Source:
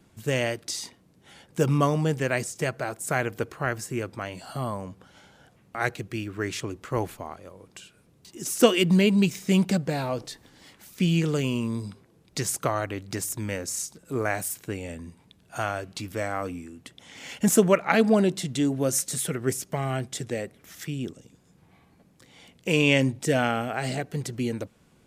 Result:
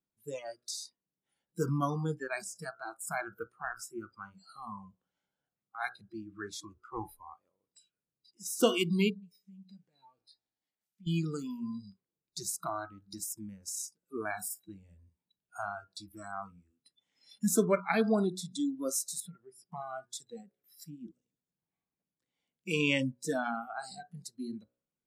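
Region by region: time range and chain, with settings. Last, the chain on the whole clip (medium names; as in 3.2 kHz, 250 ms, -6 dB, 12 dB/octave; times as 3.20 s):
9.10–11.07 s: compression 8:1, threshold -27 dBFS + feedback comb 110 Hz, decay 2 s, mix 70%
19.20–19.70 s: low-pass 2 kHz 6 dB/octave + compression 4:1, threshold -29 dBFS
whole clip: de-hum 60.94 Hz, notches 28; spectral noise reduction 27 dB; peaking EQ 92 Hz -10 dB 0.46 oct; trim -7 dB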